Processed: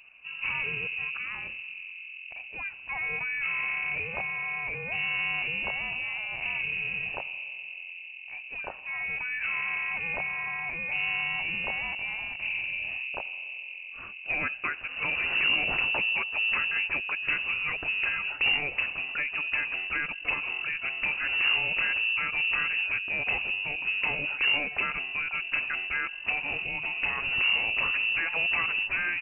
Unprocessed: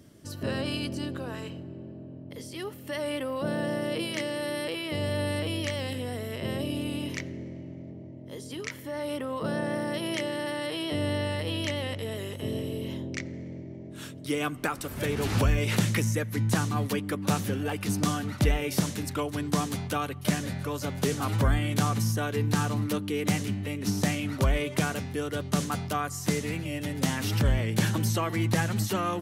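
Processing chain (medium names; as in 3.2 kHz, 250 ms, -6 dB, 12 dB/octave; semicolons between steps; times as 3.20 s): one-sided clip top -27 dBFS, bottom -19.5 dBFS; frequency inversion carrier 2.8 kHz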